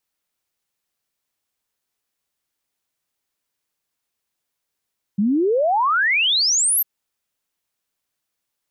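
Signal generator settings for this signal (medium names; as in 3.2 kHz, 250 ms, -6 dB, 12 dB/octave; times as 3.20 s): log sweep 190 Hz -> 13 kHz 1.65 s -15 dBFS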